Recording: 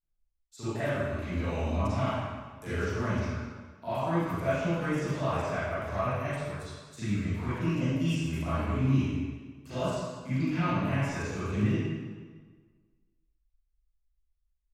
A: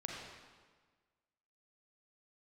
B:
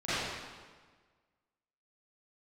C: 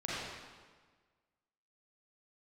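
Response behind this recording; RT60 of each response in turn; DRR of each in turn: B; 1.5, 1.5, 1.5 s; -2.0, -17.0, -8.5 dB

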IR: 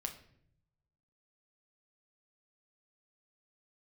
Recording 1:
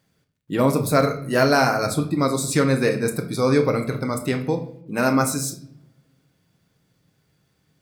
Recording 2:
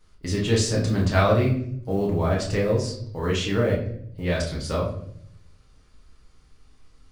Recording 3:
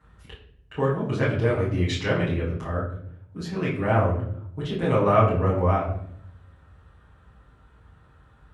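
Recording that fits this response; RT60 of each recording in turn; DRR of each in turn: 1; 0.65, 0.65, 0.65 s; 4.0, -5.0, -10.5 dB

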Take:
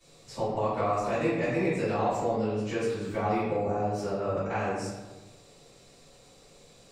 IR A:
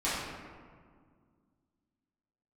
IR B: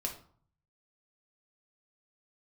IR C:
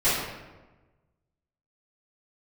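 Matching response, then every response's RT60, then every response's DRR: C; 1.9, 0.50, 1.2 s; -12.0, 0.5, -15.5 dB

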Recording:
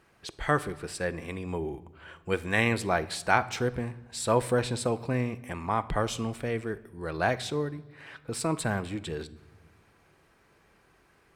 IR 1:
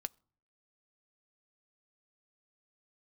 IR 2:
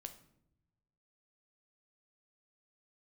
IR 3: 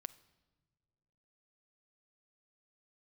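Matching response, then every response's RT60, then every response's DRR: 3; not exponential, not exponential, not exponential; 14.0, 7.0, 13.5 dB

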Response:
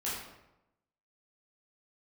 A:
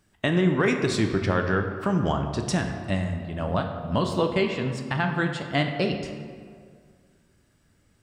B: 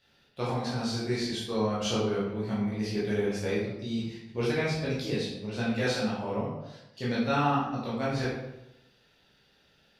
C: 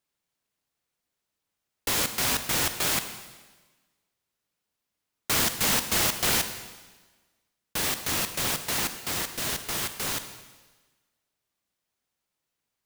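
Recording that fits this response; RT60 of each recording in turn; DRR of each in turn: B; 2.0, 0.90, 1.3 s; 4.0, -9.0, 9.0 dB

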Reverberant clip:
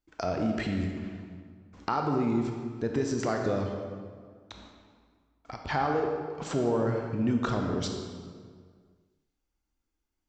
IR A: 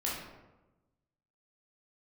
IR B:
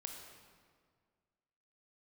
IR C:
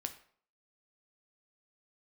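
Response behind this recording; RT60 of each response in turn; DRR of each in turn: B; 1.1, 1.9, 0.55 s; -6.0, 2.0, 6.5 dB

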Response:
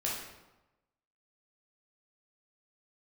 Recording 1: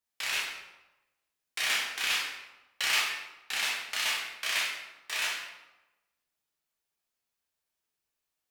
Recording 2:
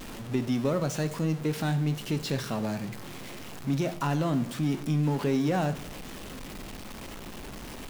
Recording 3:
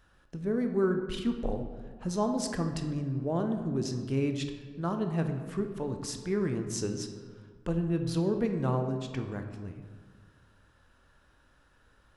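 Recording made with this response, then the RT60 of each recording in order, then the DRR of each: 1; 1.0, 0.70, 1.7 s; -5.0, 9.0, 5.5 dB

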